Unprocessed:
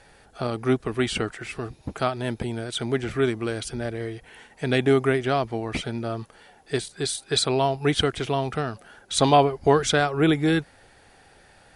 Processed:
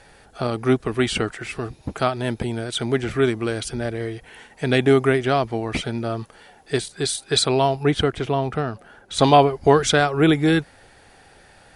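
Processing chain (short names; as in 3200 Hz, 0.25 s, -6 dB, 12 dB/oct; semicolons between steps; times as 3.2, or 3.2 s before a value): 7.83–9.19 high shelf 2500 Hz -9 dB; gain +3.5 dB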